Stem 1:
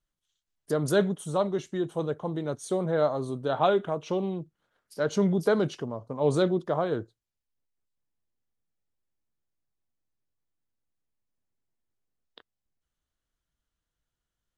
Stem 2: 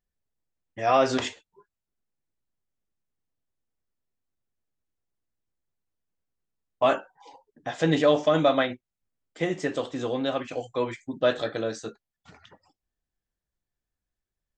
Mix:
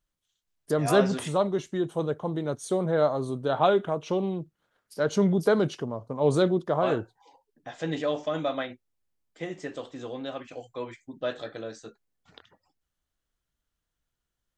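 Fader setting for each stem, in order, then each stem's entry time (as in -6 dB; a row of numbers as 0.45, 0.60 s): +1.5, -8.0 dB; 0.00, 0.00 s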